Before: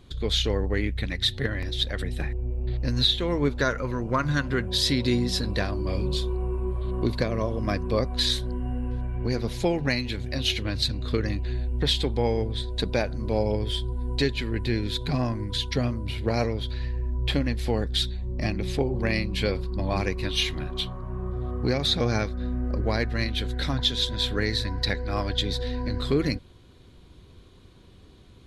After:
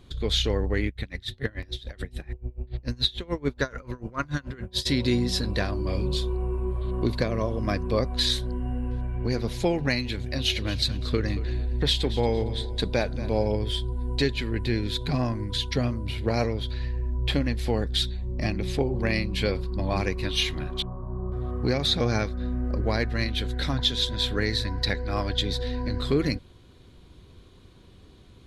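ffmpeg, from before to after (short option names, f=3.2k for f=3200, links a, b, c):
-filter_complex "[0:a]asplit=3[a][b][c];[a]afade=t=out:st=0.88:d=0.02[d];[b]aeval=exprs='val(0)*pow(10,-24*(0.5-0.5*cos(2*PI*6.9*n/s))/20)':c=same,afade=t=in:st=0.88:d=0.02,afade=t=out:st=4.85:d=0.02[e];[c]afade=t=in:st=4.85:d=0.02[f];[d][e][f]amix=inputs=3:normalize=0,asettb=1/sr,asplit=3[g][h][i];[g]atrim=end=10.224[j];[h]atrim=start=10.22:end=13.48,asetpts=PTS-STARTPTS,afade=t=in:d=0.004:c=qsin,afade=t=out:st=3.256:d=0.004:c=qsin,aecho=1:1:229|458|687:0.178|0.048|0.013,atrim=end_sample=143766[k];[i]atrim=start=13.476[l];[j][k]acrossfade=d=0.004:c1=hsin:c2=qsin[m];[m][l]acrossfade=d=0.004:c1=qsin:c2=hsin,asettb=1/sr,asplit=3[n][o][p];[n]atrim=end=20.824[q];[o]atrim=start=20.82:end=21.32,asetpts=PTS-STARTPTS,afade=t=in:d=0.004:c=qsin,afade=t=out:st=0.496:d=0.004:c=qsin,lowpass=f=1.1k:w=0.5412,lowpass=f=1.1k:w=1.3066[r];[p]atrim=start=21.316[s];[q][r]acrossfade=d=0.004:c1=hsin:c2=qsin[t];[t][s]acrossfade=d=0.004:c1=qsin:c2=hsin"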